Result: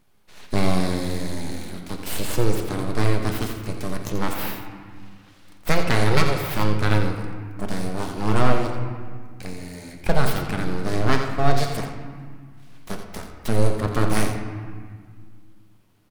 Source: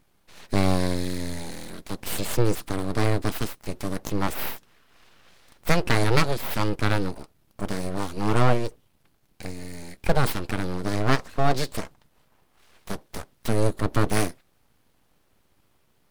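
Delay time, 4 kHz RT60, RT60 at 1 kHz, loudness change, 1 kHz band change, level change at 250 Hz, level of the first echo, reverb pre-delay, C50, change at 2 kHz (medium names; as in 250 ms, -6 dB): 86 ms, 1.2 s, 1.8 s, +1.5 dB, +2.0 dB, +2.0 dB, -10.0 dB, 5 ms, 4.5 dB, +2.0 dB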